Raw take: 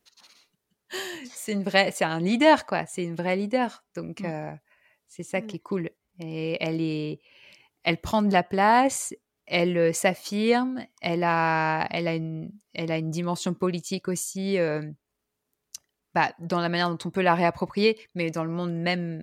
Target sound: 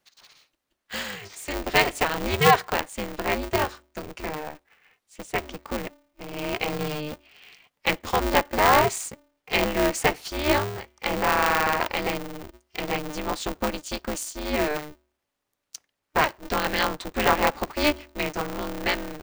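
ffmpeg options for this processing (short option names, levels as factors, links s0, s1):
-filter_complex "[0:a]bandreject=f=215.9:t=h:w=4,bandreject=f=431.8:t=h:w=4,asplit=2[s0][s1];[s1]highpass=f=720:p=1,volume=2.24,asoftclip=type=tanh:threshold=0.596[s2];[s0][s2]amix=inputs=2:normalize=0,lowpass=f=4400:p=1,volume=0.501,aeval=exprs='val(0)*sgn(sin(2*PI*150*n/s))':c=same"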